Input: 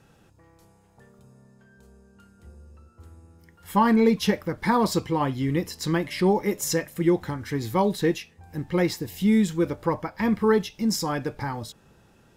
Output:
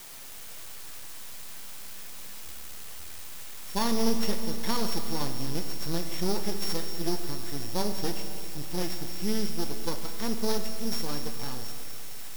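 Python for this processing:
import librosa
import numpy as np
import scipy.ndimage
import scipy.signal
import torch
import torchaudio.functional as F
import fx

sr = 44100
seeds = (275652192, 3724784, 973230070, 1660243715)

y = np.r_[np.sort(x[:len(x) // 8 * 8].reshape(-1, 8), axis=1).ravel(), x[len(x) // 8 * 8:]]
y = fx.high_shelf(y, sr, hz=4500.0, db=9.0)
y = fx.quant_dither(y, sr, seeds[0], bits=6, dither='triangular')
y = np.maximum(y, 0.0)
y = fx.rev_schroeder(y, sr, rt60_s=3.2, comb_ms=27, drr_db=6.5)
y = y * librosa.db_to_amplitude(-6.0)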